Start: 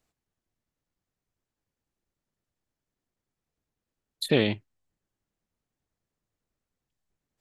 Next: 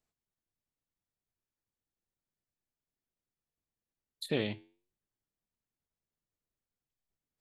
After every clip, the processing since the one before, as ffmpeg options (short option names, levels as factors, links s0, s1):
-af "flanger=delay=4.7:depth=6.4:regen=-85:speed=0.34:shape=sinusoidal,volume=0.562"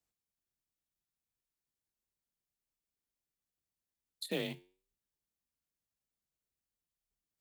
-af "acrusher=bits=6:mode=log:mix=0:aa=0.000001,highshelf=f=3700:g=7,afreqshift=31,volume=0.562"